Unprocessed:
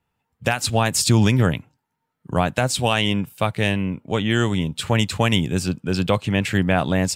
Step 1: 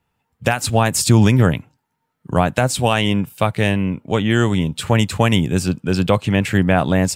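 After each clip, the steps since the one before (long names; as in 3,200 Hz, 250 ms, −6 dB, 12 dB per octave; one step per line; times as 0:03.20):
dynamic equaliser 4,000 Hz, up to −5 dB, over −33 dBFS, Q 0.74
level +4 dB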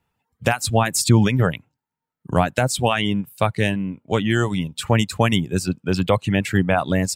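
reverb reduction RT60 1.2 s
level −1.5 dB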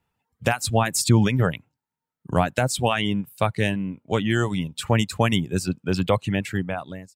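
fade-out on the ending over 1.01 s
level −2.5 dB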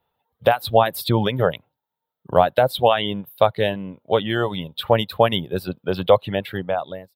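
drawn EQ curve 280 Hz 0 dB, 550 Hz +14 dB, 2,500 Hz 0 dB, 3,600 Hz +12 dB, 6,900 Hz −22 dB, 13,000 Hz +10 dB
level −4 dB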